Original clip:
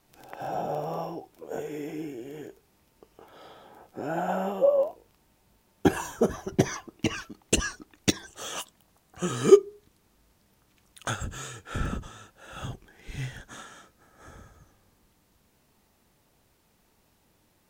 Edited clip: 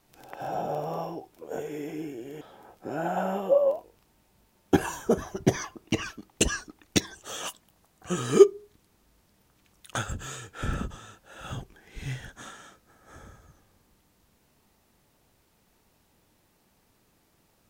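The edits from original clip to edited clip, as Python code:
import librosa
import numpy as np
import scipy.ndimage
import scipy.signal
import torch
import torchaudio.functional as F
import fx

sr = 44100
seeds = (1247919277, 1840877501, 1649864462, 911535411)

y = fx.edit(x, sr, fx.cut(start_s=2.41, length_s=1.12), tone=tone)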